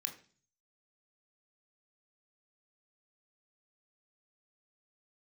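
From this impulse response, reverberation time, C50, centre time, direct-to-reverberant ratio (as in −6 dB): 0.40 s, 12.0 dB, 13 ms, 3.5 dB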